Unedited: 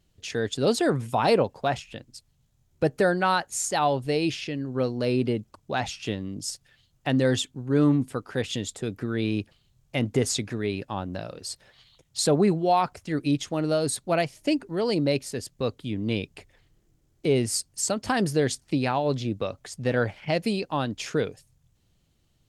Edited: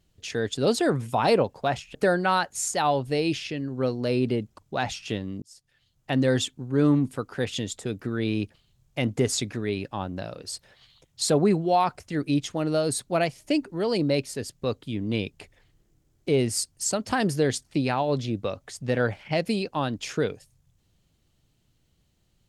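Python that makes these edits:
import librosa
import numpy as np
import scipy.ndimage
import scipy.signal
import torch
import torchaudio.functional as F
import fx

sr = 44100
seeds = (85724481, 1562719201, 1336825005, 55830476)

y = fx.edit(x, sr, fx.cut(start_s=1.95, length_s=0.97),
    fx.fade_in_span(start_s=6.39, length_s=0.77), tone=tone)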